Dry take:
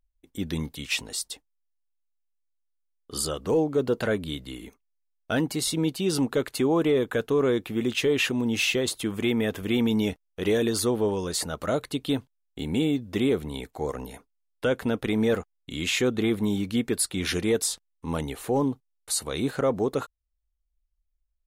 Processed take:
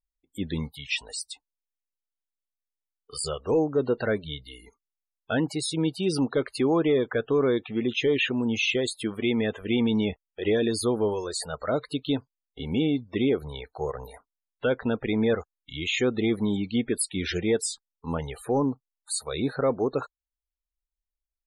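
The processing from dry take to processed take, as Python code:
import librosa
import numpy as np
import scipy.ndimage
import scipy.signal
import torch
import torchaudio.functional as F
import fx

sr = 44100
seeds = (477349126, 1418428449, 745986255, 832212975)

y = fx.noise_reduce_blind(x, sr, reduce_db=14)
y = fx.spec_topn(y, sr, count=64)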